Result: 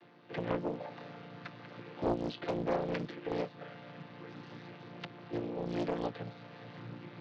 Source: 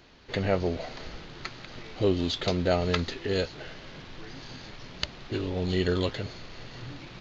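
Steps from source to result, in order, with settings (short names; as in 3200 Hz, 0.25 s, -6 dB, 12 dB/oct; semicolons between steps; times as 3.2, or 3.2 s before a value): chord vocoder major triad, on A#2; HPF 550 Hz 6 dB/oct; in parallel at +0.5 dB: compressor, threshold -50 dBFS, peak gain reduction 21.5 dB; on the sum: air absorption 200 m; Doppler distortion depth 0.93 ms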